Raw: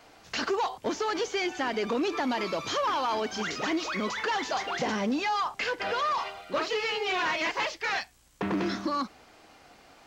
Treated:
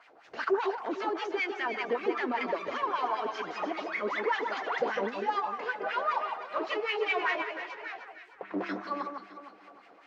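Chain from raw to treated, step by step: 7.41–8.54 compressor 4:1, threshold -39 dBFS, peak gain reduction 11 dB; LFO band-pass sine 5.1 Hz 380–2300 Hz; echo with dull and thin repeats by turns 0.153 s, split 1500 Hz, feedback 62%, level -5 dB; gain +4 dB

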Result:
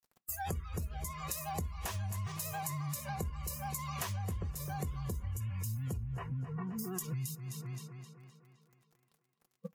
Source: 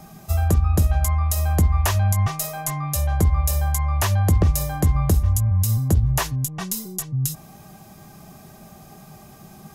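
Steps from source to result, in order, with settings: in parallel at -1.5 dB: limiter -19 dBFS, peak gain reduction 9.5 dB; on the sum: bit-crush 5-bit; 5.97–6.79 tape spacing loss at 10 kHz 32 dB; on a send at -17 dB: reverb, pre-delay 3 ms; on the sum: spectral noise reduction 30 dB; vibrato 11 Hz 48 cents; notch comb 300 Hz; tape echo 0.26 s, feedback 58%, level -12.5 dB, low-pass 5100 Hz; compressor 10:1, threshold -37 dBFS, peak gain reduction 25 dB; gain +1 dB

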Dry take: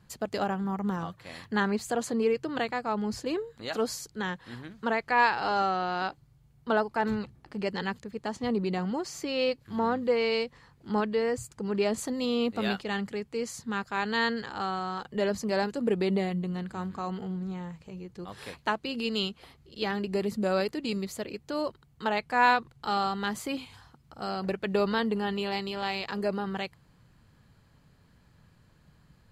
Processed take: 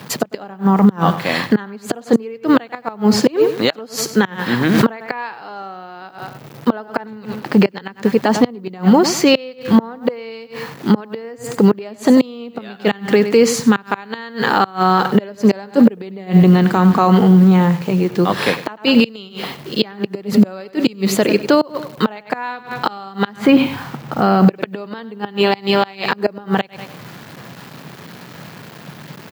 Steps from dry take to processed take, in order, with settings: 23.36–24.48 tone controls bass +6 dB, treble -15 dB; bit-crush 10-bit; feedback echo 97 ms, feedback 29%, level -15 dB; flipped gate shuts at -21 dBFS, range -30 dB; HPF 140 Hz 24 dB/oct; bell 9000 Hz -9.5 dB 1.4 oct; maximiser +27.5 dB; 4.61–5.1 backwards sustainer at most 25 dB/s; gain -1.5 dB

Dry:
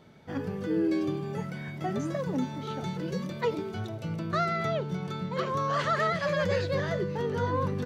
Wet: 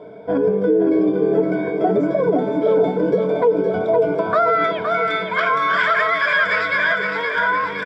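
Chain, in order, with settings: ripple EQ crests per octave 1.7, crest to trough 15 dB; compressor 4:1, threshold -29 dBFS, peak gain reduction 9.5 dB; band-pass sweep 520 Hz -> 1800 Hz, 3.92–4.77; feedback echo 0.516 s, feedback 56%, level -6 dB; maximiser +29.5 dB; gain -7 dB

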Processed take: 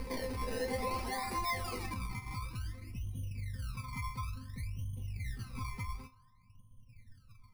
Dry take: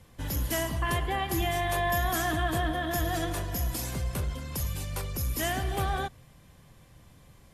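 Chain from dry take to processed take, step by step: opening faded in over 0.56 s; reverse echo 0.403 s -5 dB; reverb removal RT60 1.2 s; low-pass sweep 8900 Hz -> 120 Hz, 0.73–2.17; decimation with a swept rate 27×, swing 100% 0.56 Hz; ripple EQ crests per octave 0.89, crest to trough 11 dB; narrowing echo 68 ms, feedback 79%, band-pass 970 Hz, level -23 dB; limiter -27.5 dBFS, peak gain reduction 14.5 dB; resonator 260 Hz, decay 0.18 s, harmonics all, mix 90%; gain +9 dB

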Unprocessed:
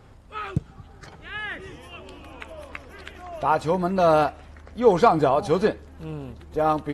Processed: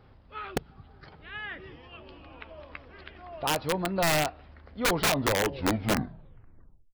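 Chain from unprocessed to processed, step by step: tape stop at the end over 2.05 s; downsampling 11025 Hz; wrapped overs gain 12.5 dB; gain -6 dB

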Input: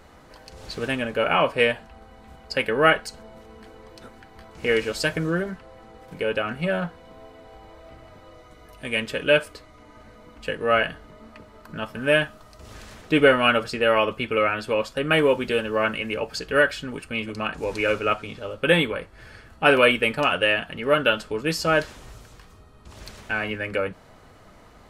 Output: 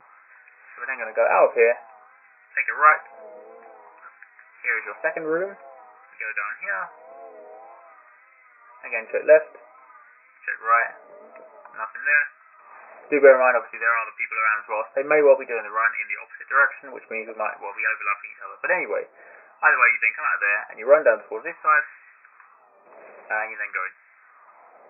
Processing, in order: LFO high-pass sine 0.51 Hz 510–1800 Hz; wow and flutter 79 cents; FFT band-pass 130–2600 Hz; gain -1 dB

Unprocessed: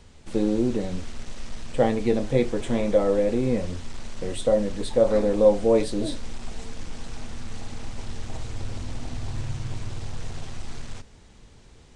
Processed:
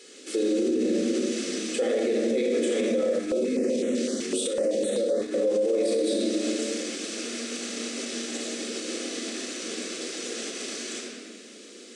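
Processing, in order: bell 8400 Hz +5.5 dB 1.6 oct; notches 50/100/150/200/250/300/350/400/450/500 Hz; shoebox room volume 3000 m³, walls mixed, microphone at 4.1 m; compressor, threshold -15 dBFS, peak gain reduction 9.5 dB; brick-wall FIR high-pass 190 Hz; fixed phaser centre 370 Hz, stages 4; limiter -23 dBFS, peak gain reduction 11.5 dB; 3.19–5.34 stepped notch 7.9 Hz 530–4800 Hz; gain +5.5 dB

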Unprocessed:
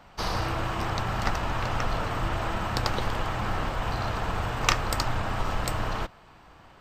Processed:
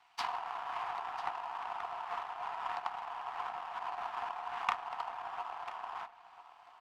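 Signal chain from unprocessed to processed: treble ducked by the level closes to 970 Hz, closed at -24 dBFS; rippled Chebyshev high-pass 690 Hz, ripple 6 dB; power-law curve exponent 1.4; on a send: echo 0.995 s -15 dB; on the sum: gain +5.5 dB

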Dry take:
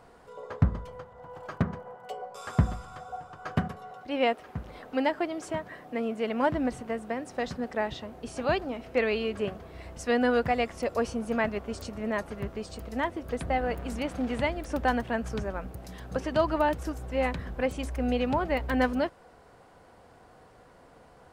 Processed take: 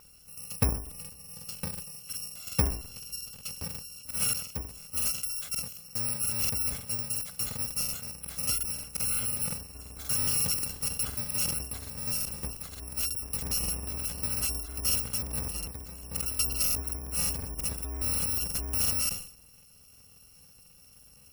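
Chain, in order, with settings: FFT order left unsorted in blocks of 128 samples; in parallel at -7 dB: wrapped overs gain 22.5 dB; on the sum: spectral gate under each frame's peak -30 dB strong; crackling interface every 0.18 s, samples 2048, repeat, from 0.82; sustainer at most 100 dB/s; gain -4 dB

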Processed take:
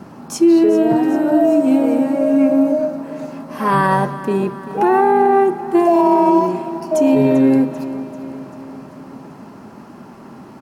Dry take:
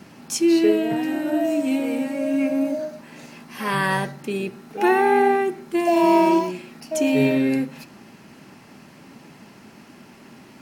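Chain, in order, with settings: resonant high shelf 1600 Hz -9.5 dB, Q 1.5; limiter -13.5 dBFS, peak gain reduction 8 dB; feedback echo 0.391 s, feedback 57%, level -15 dB; gain +8 dB

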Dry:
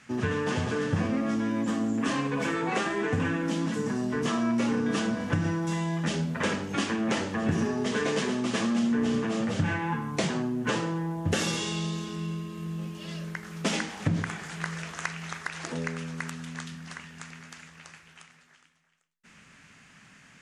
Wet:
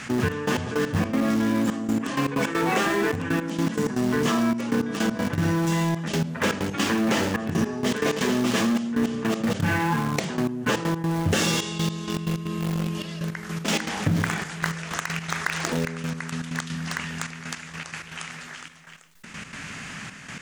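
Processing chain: step gate "xxx..x..x.x.xxx" 159 bpm -12 dB; in parallel at -9.5 dB: bit-crush 5-bit; on the sum: fast leveller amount 50%

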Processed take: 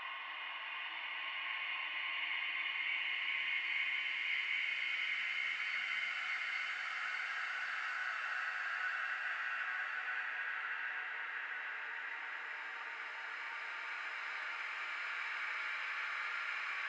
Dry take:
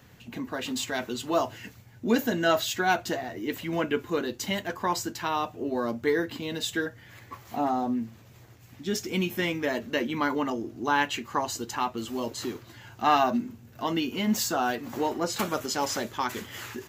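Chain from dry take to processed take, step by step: spectral swells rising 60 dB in 0.42 s; compressor, threshold -31 dBFS, peak gain reduction 13.5 dB; Butterworth band-pass 2000 Hz, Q 2.2; reverb RT60 1.7 s, pre-delay 43 ms, DRR 7.5 dB; Paulstretch 9.6×, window 1.00 s, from 13.72; gain +8 dB

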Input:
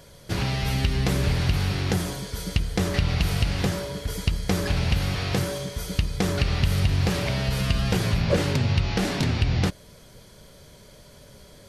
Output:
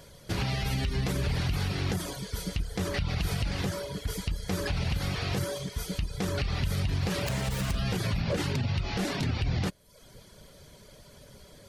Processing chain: 7.26–7.77 self-modulated delay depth 0.48 ms; reverb removal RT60 0.6 s; limiter -19 dBFS, peak gain reduction 8.5 dB; gain -1.5 dB

